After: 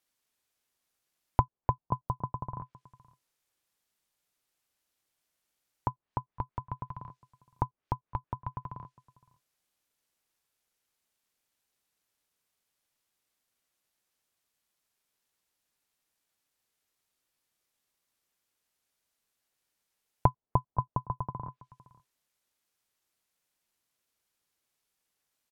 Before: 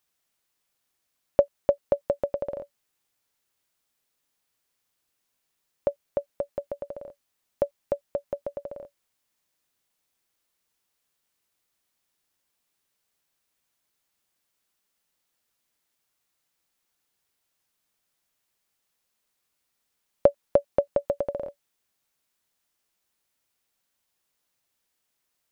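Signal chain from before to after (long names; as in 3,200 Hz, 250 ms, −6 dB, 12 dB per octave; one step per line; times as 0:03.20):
slap from a distant wall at 88 metres, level −24 dB
treble cut that deepens with the level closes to 520 Hz, closed at −27.5 dBFS
ring modulation 440 Hz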